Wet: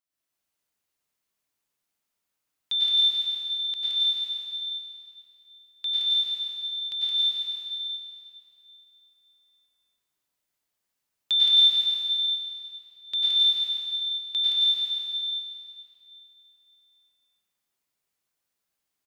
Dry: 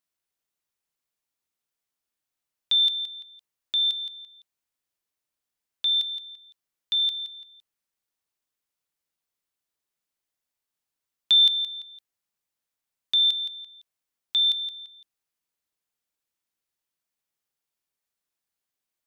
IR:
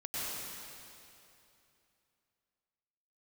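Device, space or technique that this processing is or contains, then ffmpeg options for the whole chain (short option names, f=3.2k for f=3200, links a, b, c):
cave: -filter_complex "[0:a]aecho=1:1:329:0.282[a];[1:a]atrim=start_sample=2205[b];[a][b]afir=irnorm=-1:irlink=0"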